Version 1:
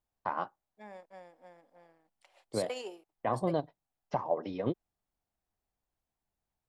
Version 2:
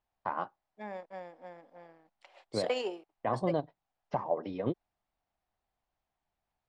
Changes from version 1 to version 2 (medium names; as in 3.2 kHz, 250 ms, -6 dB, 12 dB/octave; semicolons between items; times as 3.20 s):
second voice +7.5 dB; master: add distance through air 110 m